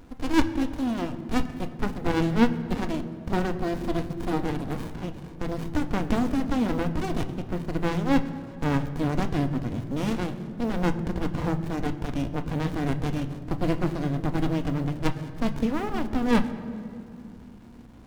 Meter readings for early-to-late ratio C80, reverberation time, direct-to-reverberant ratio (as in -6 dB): 13.0 dB, 2.4 s, 8.0 dB